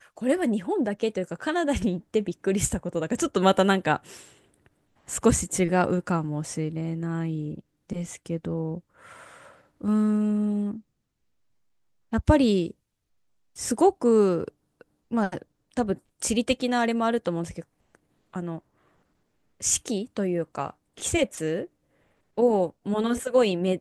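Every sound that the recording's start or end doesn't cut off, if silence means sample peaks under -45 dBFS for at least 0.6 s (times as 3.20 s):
12.12–12.71 s
13.56–18.59 s
19.60–21.66 s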